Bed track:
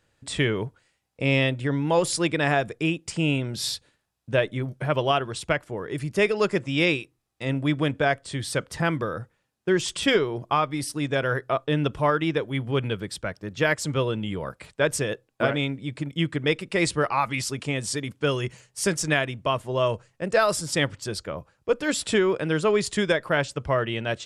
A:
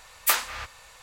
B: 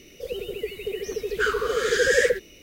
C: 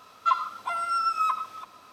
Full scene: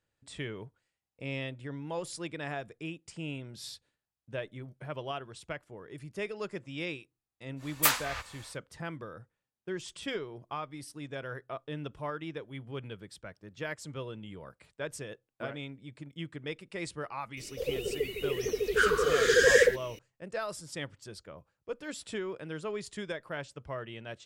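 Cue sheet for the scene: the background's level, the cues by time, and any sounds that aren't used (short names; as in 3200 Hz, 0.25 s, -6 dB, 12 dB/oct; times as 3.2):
bed track -15 dB
7.56 add A -2.5 dB, fades 0.10 s
17.37 add B -1.5 dB
not used: C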